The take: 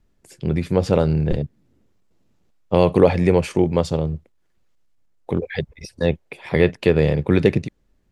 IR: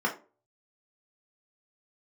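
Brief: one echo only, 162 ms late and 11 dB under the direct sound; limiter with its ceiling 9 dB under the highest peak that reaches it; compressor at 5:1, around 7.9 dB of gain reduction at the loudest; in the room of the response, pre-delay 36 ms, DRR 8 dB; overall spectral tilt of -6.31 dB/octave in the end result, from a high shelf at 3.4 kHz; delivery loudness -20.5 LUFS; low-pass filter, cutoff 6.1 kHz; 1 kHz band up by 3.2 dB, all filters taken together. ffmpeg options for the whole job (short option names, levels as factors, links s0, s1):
-filter_complex "[0:a]lowpass=6100,equalizer=f=1000:t=o:g=3.5,highshelf=f=3400:g=7,acompressor=threshold=0.141:ratio=5,alimiter=limit=0.224:level=0:latency=1,aecho=1:1:162:0.282,asplit=2[s0][s1];[1:a]atrim=start_sample=2205,adelay=36[s2];[s1][s2]afir=irnorm=-1:irlink=0,volume=0.119[s3];[s0][s3]amix=inputs=2:normalize=0,volume=2"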